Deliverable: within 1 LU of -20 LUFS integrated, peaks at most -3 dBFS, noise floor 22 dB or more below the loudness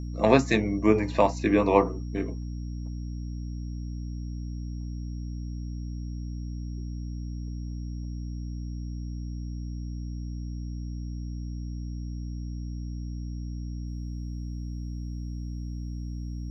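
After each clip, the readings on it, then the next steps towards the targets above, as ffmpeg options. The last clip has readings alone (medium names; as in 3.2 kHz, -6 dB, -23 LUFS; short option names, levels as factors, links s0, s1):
hum 60 Hz; highest harmonic 300 Hz; hum level -32 dBFS; steady tone 5.6 kHz; tone level -58 dBFS; loudness -31.0 LUFS; peak level -6.0 dBFS; loudness target -20.0 LUFS
-> -af "bandreject=f=60:t=h:w=6,bandreject=f=120:t=h:w=6,bandreject=f=180:t=h:w=6,bandreject=f=240:t=h:w=6,bandreject=f=300:t=h:w=6"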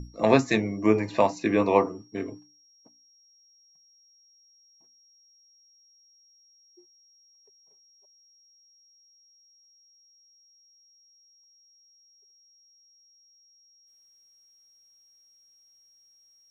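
hum not found; steady tone 5.6 kHz; tone level -58 dBFS
-> -af "bandreject=f=5600:w=30"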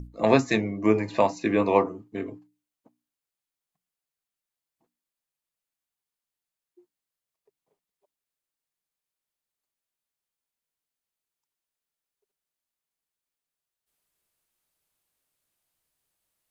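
steady tone not found; loudness -24.0 LUFS; peak level -6.0 dBFS; loudness target -20.0 LUFS
-> -af "volume=1.58,alimiter=limit=0.708:level=0:latency=1"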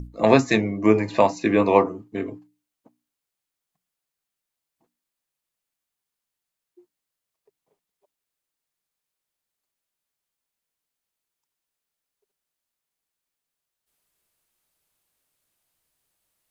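loudness -20.0 LUFS; peak level -3.0 dBFS; noise floor -85 dBFS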